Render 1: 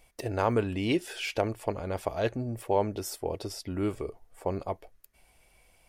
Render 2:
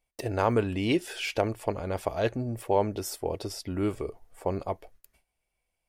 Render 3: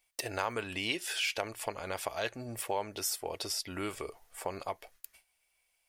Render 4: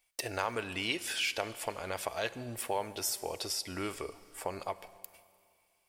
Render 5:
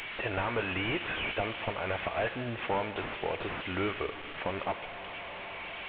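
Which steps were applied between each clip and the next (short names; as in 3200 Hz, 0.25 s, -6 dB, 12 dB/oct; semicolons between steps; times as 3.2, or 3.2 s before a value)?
gate with hold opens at -49 dBFS; gain +1.5 dB
tilt shelf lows -10 dB, about 690 Hz; compressor 2:1, threshold -36 dBFS, peak gain reduction 10.5 dB
Schroeder reverb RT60 2.3 s, combs from 33 ms, DRR 15.5 dB
delta modulation 16 kbps, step -43 dBFS; high shelf 2200 Hz +11 dB; gain +5 dB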